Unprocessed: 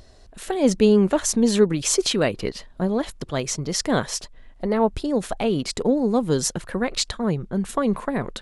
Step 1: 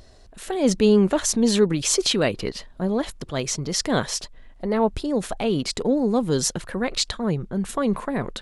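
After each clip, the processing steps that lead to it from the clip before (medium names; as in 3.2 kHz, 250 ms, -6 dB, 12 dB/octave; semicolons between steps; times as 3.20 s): dynamic bell 3.9 kHz, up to +3 dB, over -37 dBFS, Q 1.1; transient shaper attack -3 dB, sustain +1 dB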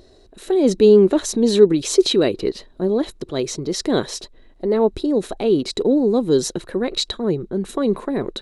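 small resonant body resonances 360/3900 Hz, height 14 dB, ringing for 20 ms; trim -3.5 dB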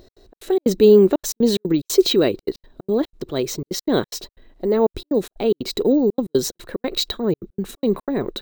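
trance gate "x.xx.xx.xxxxxx." 182 bpm -60 dB; careless resampling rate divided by 2×, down filtered, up hold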